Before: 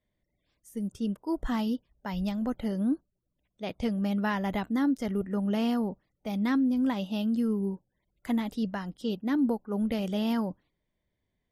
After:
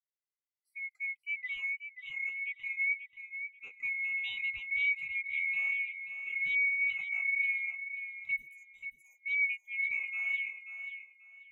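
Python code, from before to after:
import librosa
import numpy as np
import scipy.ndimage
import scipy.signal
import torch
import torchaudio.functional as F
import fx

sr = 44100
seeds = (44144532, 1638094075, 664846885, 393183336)

p1 = fx.band_swap(x, sr, width_hz=2000)
p2 = fx.curve_eq(p1, sr, hz=(520.0, 1800.0, 10000.0), db=(0, -29, 13), at=(8.36, 9.26))
p3 = p2 + fx.echo_feedback(p2, sr, ms=535, feedback_pct=39, wet_db=-6.0, dry=0)
p4 = fx.spectral_expand(p3, sr, expansion=1.5)
y = p4 * 10.0 ** (-7.0 / 20.0)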